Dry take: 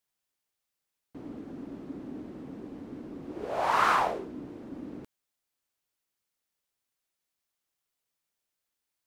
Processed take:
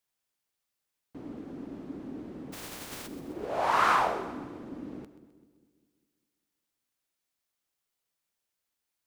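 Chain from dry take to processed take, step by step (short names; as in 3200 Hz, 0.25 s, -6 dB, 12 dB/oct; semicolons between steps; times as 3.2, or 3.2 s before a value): 2.52–3.06 spectral contrast lowered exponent 0.26; split-band echo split 490 Hz, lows 0.2 s, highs 0.129 s, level -13.5 dB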